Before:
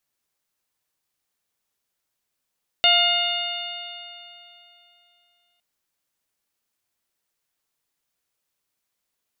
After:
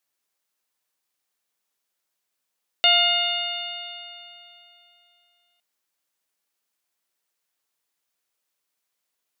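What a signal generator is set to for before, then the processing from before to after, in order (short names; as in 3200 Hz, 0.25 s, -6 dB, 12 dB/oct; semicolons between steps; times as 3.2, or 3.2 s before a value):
stretched partials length 2.76 s, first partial 698 Hz, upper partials -6/-2.5/6/2/-8 dB, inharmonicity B 0.0026, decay 2.95 s, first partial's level -21 dB
HPF 310 Hz 6 dB/oct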